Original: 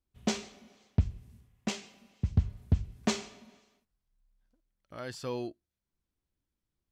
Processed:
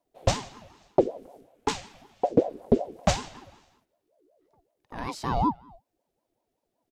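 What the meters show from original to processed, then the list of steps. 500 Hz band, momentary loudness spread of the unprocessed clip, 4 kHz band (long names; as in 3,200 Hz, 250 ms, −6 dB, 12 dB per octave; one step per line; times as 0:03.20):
+13.5 dB, 14 LU, +4.0 dB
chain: parametric band 340 Hz +15 dB 0.29 octaves
far-end echo of a speakerphone 270 ms, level −25 dB
ring modulator whose carrier an LFO sweeps 490 Hz, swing 35%, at 5.3 Hz
level +7 dB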